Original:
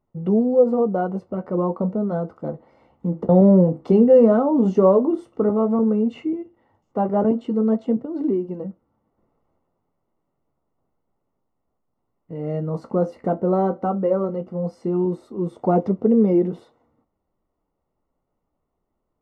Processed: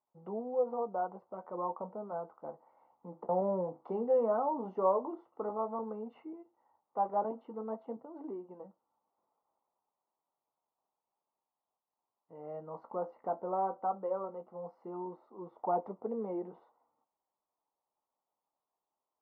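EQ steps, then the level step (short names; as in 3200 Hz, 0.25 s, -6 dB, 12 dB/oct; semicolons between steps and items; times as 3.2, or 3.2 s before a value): band-pass 910 Hz, Q 3; air absorption 120 m; -3.5 dB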